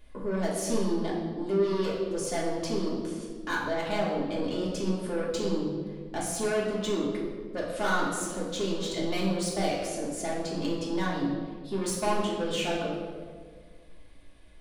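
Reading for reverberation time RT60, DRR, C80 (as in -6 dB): 1.7 s, -6.0 dB, 4.0 dB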